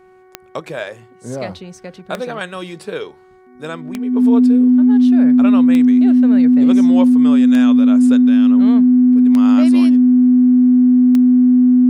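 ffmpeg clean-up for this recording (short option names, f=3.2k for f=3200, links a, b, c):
-af "adeclick=t=4,bandreject=f=371.9:t=h:w=4,bandreject=f=743.8:t=h:w=4,bandreject=f=1.1157k:t=h:w=4,bandreject=f=1.4876k:t=h:w=4,bandreject=f=1.8595k:t=h:w=4,bandreject=f=2.2314k:t=h:w=4,bandreject=f=250:w=30"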